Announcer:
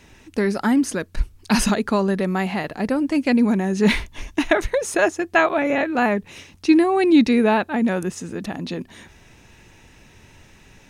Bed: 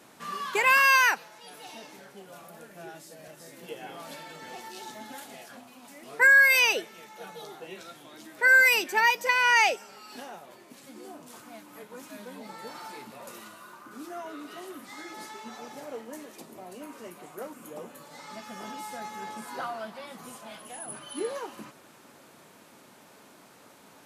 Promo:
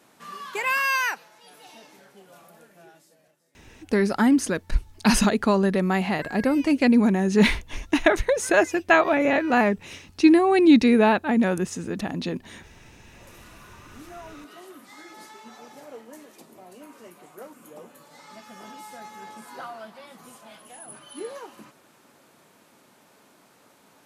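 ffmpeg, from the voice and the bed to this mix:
-filter_complex "[0:a]adelay=3550,volume=-0.5dB[a];[1:a]volume=16.5dB,afade=t=out:st=2.47:d=0.94:silence=0.105925,afade=t=in:st=13.01:d=0.59:silence=0.1[b];[a][b]amix=inputs=2:normalize=0"

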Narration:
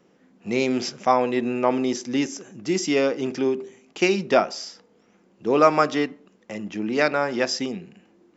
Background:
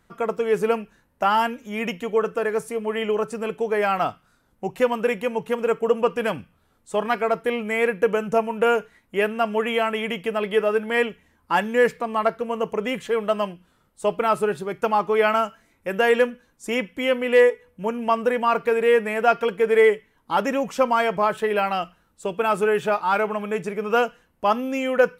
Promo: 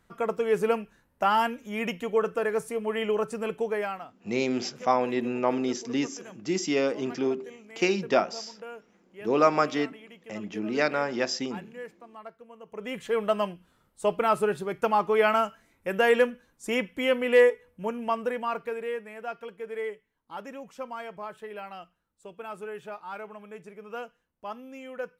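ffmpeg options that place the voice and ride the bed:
-filter_complex "[0:a]adelay=3800,volume=-4.5dB[a];[1:a]volume=16dB,afade=t=out:st=3.6:d=0.45:silence=0.112202,afade=t=in:st=12.66:d=0.53:silence=0.105925,afade=t=out:st=17.38:d=1.66:silence=0.188365[b];[a][b]amix=inputs=2:normalize=0"

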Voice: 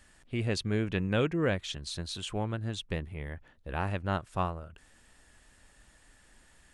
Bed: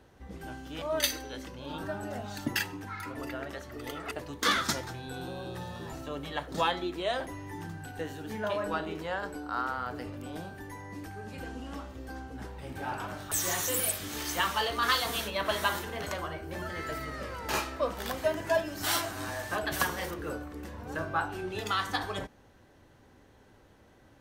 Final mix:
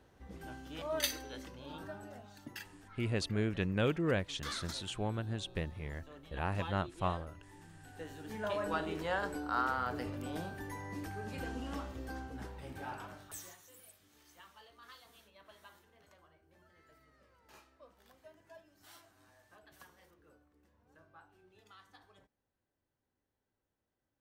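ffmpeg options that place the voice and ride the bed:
-filter_complex "[0:a]adelay=2650,volume=-3.5dB[a];[1:a]volume=10.5dB,afade=t=out:st=1.39:d=0.94:silence=0.281838,afade=t=in:st=7.7:d=1.47:silence=0.158489,afade=t=out:st=11.9:d=1.67:silence=0.0375837[b];[a][b]amix=inputs=2:normalize=0"

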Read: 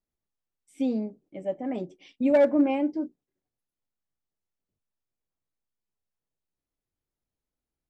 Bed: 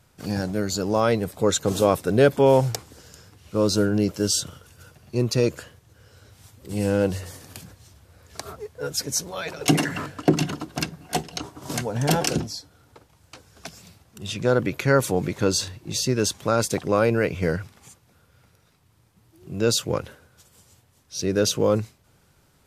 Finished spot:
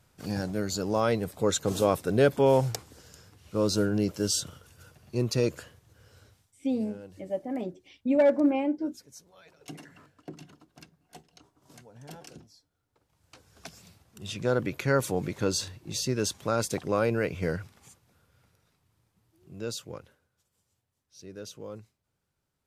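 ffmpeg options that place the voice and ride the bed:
-filter_complex "[0:a]adelay=5850,volume=-1.5dB[a];[1:a]volume=13.5dB,afade=t=out:st=6.21:d=0.25:silence=0.105925,afade=t=in:st=12.92:d=0.62:silence=0.11885,afade=t=out:st=17.94:d=2.39:silence=0.177828[b];[a][b]amix=inputs=2:normalize=0"

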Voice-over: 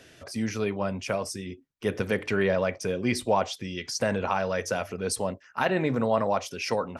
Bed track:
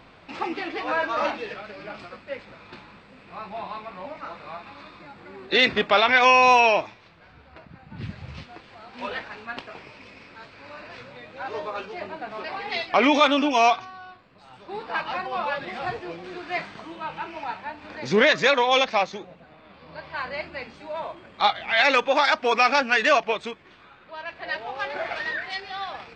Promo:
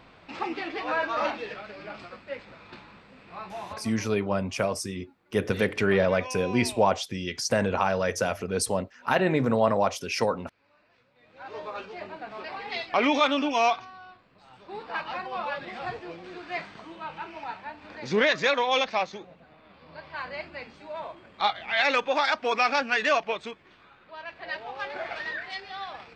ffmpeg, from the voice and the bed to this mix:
-filter_complex "[0:a]adelay=3500,volume=2dB[a];[1:a]volume=16dB,afade=t=out:st=3.49:d=0.7:silence=0.0944061,afade=t=in:st=11.15:d=0.55:silence=0.11885[b];[a][b]amix=inputs=2:normalize=0"

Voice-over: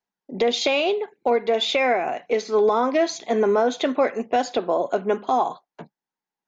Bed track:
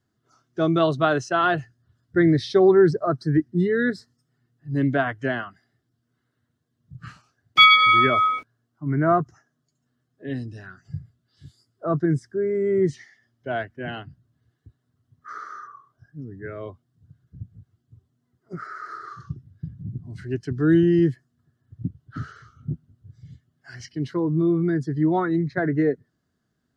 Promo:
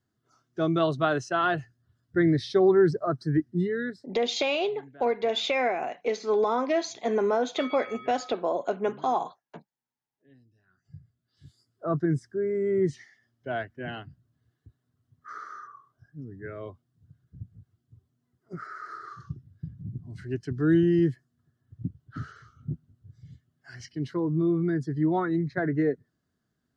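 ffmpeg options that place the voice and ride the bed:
-filter_complex "[0:a]adelay=3750,volume=-5.5dB[a];[1:a]volume=20dB,afade=t=out:st=3.56:d=0.6:silence=0.0630957,afade=t=in:st=10.67:d=1.04:silence=0.0595662[b];[a][b]amix=inputs=2:normalize=0"

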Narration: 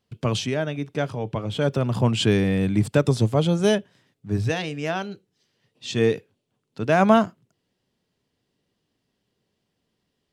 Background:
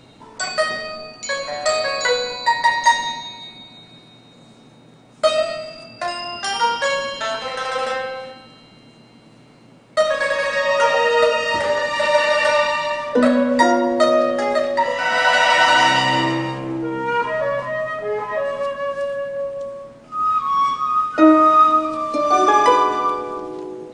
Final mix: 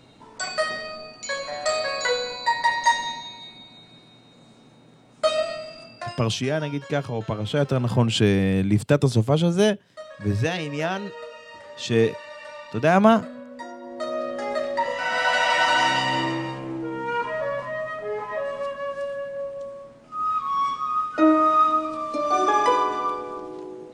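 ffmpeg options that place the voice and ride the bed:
-filter_complex "[0:a]adelay=5950,volume=0.5dB[a];[1:a]volume=12dB,afade=t=out:st=5.86:d=0.46:silence=0.125893,afade=t=in:st=13.79:d=0.97:silence=0.141254[b];[a][b]amix=inputs=2:normalize=0"

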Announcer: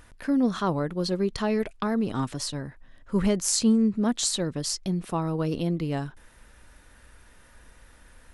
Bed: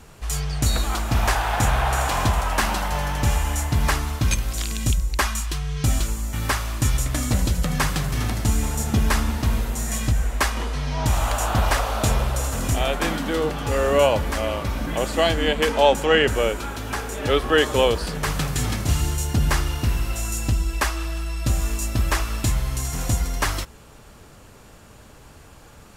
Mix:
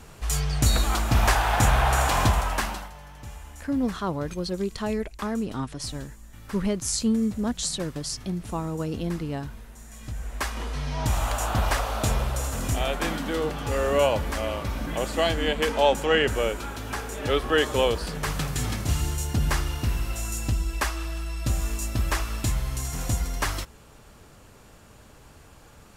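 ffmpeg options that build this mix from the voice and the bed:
-filter_complex "[0:a]adelay=3400,volume=-2.5dB[a];[1:a]volume=16dB,afade=t=out:st=2.24:d=0.69:silence=0.1,afade=t=in:st=9.96:d=0.83:silence=0.158489[b];[a][b]amix=inputs=2:normalize=0"

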